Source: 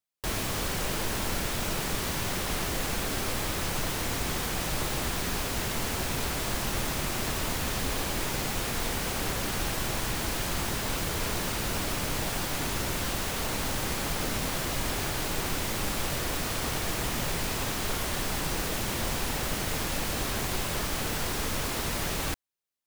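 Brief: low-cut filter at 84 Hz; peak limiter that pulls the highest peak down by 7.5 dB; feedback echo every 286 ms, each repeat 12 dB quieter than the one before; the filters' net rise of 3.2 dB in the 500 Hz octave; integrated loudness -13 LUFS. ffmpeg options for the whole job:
-af "highpass=84,equalizer=f=500:t=o:g=4,alimiter=level_in=1.06:limit=0.0631:level=0:latency=1,volume=0.944,aecho=1:1:286|572|858:0.251|0.0628|0.0157,volume=9.44"

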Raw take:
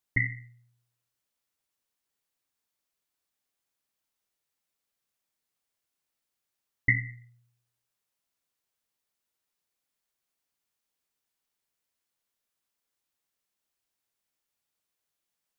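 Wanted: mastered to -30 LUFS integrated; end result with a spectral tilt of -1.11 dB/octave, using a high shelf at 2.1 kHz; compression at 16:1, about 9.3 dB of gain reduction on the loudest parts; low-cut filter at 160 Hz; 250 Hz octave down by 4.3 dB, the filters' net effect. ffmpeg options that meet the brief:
-af "highpass=160,equalizer=f=250:t=o:g=-3.5,highshelf=f=2100:g=-7,acompressor=threshold=0.0282:ratio=16,volume=3.35"

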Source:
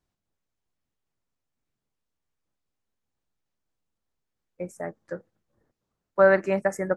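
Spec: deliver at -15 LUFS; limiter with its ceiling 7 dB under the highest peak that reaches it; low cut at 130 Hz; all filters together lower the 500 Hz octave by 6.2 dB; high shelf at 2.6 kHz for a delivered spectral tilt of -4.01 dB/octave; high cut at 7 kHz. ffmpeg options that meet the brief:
-af "highpass=130,lowpass=7000,equalizer=f=500:t=o:g=-8,highshelf=f=2600:g=7,volume=6.68,alimiter=limit=1:level=0:latency=1"

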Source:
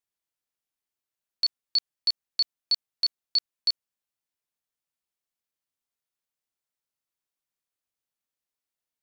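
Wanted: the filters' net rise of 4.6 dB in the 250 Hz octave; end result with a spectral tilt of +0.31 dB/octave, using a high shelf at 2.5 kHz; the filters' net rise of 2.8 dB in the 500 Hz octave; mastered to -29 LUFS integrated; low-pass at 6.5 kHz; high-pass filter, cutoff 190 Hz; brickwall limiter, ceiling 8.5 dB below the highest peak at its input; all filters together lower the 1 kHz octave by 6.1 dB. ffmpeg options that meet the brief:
-af "highpass=190,lowpass=6500,equalizer=f=250:t=o:g=6.5,equalizer=f=500:t=o:g=4.5,equalizer=f=1000:t=o:g=-8.5,highshelf=f=2500:g=-7.5,volume=4.22,alimiter=limit=0.112:level=0:latency=1"

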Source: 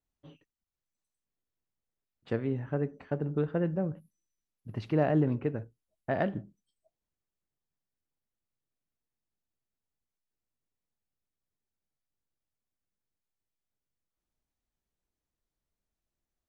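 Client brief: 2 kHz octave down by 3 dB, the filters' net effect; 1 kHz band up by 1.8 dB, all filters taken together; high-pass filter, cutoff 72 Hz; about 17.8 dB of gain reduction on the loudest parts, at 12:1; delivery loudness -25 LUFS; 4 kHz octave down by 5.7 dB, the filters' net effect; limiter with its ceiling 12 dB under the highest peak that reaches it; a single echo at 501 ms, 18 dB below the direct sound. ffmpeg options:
-af "highpass=72,equalizer=f=1000:t=o:g=4,equalizer=f=2000:t=o:g=-4,equalizer=f=4000:t=o:g=-6.5,acompressor=threshold=0.0112:ratio=12,alimiter=level_in=4.22:limit=0.0631:level=0:latency=1,volume=0.237,aecho=1:1:501:0.126,volume=16.8"

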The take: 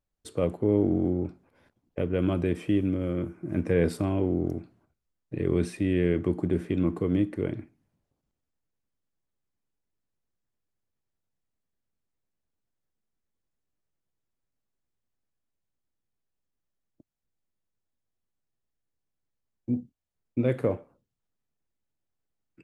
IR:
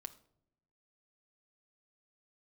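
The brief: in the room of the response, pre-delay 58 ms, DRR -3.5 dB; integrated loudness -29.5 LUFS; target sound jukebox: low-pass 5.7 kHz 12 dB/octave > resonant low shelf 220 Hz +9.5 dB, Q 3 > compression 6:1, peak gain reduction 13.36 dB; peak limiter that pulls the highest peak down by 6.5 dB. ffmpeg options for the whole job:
-filter_complex "[0:a]alimiter=limit=0.133:level=0:latency=1,asplit=2[s0][s1];[1:a]atrim=start_sample=2205,adelay=58[s2];[s1][s2]afir=irnorm=-1:irlink=0,volume=2.51[s3];[s0][s3]amix=inputs=2:normalize=0,lowpass=5700,lowshelf=f=220:t=q:w=3:g=9.5,acompressor=threshold=0.0794:ratio=6,volume=0.75"

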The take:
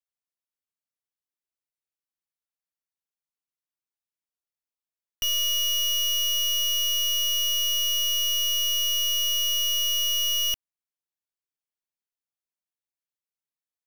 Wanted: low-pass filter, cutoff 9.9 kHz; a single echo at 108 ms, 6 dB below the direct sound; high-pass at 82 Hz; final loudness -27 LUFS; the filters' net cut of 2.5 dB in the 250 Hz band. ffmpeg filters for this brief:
-af "highpass=82,lowpass=9900,equalizer=f=250:t=o:g=-3,aecho=1:1:108:0.501,volume=0.473"

